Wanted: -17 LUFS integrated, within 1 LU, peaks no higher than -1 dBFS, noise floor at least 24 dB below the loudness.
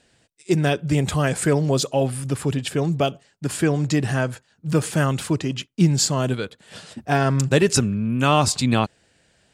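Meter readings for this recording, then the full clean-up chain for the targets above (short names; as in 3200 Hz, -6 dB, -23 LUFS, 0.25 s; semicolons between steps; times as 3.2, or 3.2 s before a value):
loudness -21.5 LUFS; peak -3.5 dBFS; loudness target -17.0 LUFS
-> gain +4.5 dB; limiter -1 dBFS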